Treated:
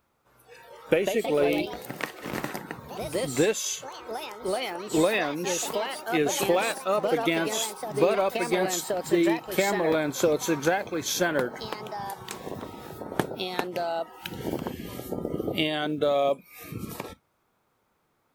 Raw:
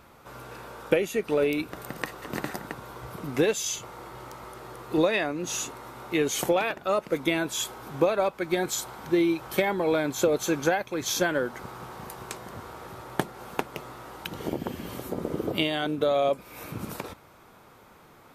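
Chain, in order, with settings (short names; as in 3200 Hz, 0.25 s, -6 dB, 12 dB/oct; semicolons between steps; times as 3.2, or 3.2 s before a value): spectral noise reduction 18 dB; companded quantiser 8-bit; echoes that change speed 0.296 s, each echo +3 st, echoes 3, each echo -6 dB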